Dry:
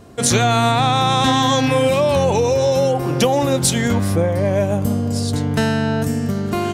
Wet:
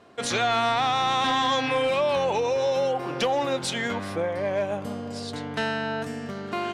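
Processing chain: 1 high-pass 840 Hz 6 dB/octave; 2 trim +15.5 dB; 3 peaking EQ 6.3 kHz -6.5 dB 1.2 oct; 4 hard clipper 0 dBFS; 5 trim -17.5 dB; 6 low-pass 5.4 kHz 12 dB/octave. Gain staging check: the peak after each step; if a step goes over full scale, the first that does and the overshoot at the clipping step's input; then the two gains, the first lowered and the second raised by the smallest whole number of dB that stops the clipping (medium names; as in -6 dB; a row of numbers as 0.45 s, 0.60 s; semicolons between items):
-3.5 dBFS, +12.0 dBFS, +8.0 dBFS, 0.0 dBFS, -17.5 dBFS, -17.0 dBFS; step 2, 8.0 dB; step 2 +7.5 dB, step 5 -9.5 dB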